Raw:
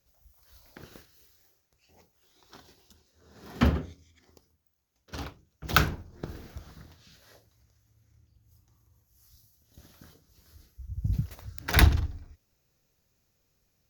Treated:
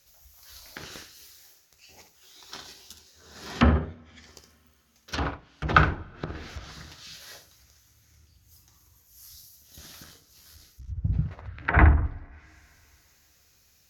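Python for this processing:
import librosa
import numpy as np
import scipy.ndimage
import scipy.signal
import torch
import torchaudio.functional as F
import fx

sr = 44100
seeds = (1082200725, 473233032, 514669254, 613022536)

y = fx.leveller(x, sr, passes=2, at=(5.18, 5.72))
y = fx.lowpass(y, sr, hz=fx.line((11.4, 3100.0), (12.04, 1800.0)), slope=24, at=(11.4, 12.04), fade=0.02)
y = fx.room_early_taps(y, sr, ms=(13, 67), db=(-10.0, -9.5))
y = fx.rev_double_slope(y, sr, seeds[0], early_s=0.28, late_s=3.2, knee_db=-17, drr_db=19.0)
y = fx.env_lowpass_down(y, sr, base_hz=1200.0, full_db=-31.5)
y = fx.tilt_shelf(y, sr, db=-6.5, hz=1100.0)
y = fx.tube_stage(y, sr, drive_db=45.0, bias=0.7, at=(10.03, 10.88))
y = F.gain(torch.from_numpy(y), 8.0).numpy()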